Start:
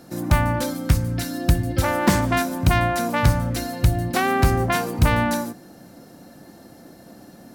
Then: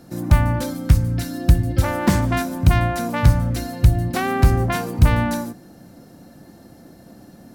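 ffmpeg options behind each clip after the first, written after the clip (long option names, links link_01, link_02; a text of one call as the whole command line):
ffmpeg -i in.wav -af "lowshelf=frequency=190:gain=8.5,volume=-2.5dB" out.wav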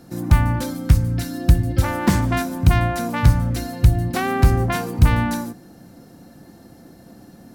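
ffmpeg -i in.wav -af "bandreject=frequency=600:width=12" out.wav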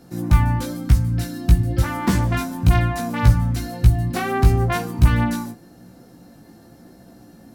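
ffmpeg -i in.wav -af "flanger=delay=16:depth=2.2:speed=1,volume=1.5dB" out.wav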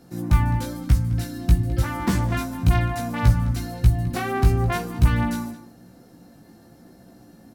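ffmpeg -i in.wav -filter_complex "[0:a]asplit=2[link_01][link_02];[link_02]adelay=209.9,volume=-15dB,highshelf=frequency=4000:gain=-4.72[link_03];[link_01][link_03]amix=inputs=2:normalize=0,volume=-3dB" out.wav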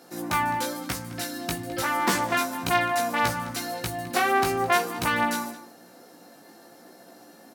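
ffmpeg -i in.wav -af "highpass=460,volume=6dB" out.wav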